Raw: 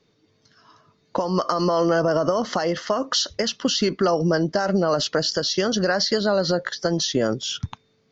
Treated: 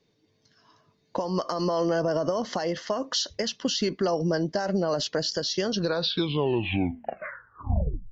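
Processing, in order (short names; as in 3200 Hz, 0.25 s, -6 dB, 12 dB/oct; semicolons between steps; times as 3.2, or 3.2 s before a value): tape stop at the end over 2.47 s; bell 1300 Hz -9 dB 0.26 oct; gain -5 dB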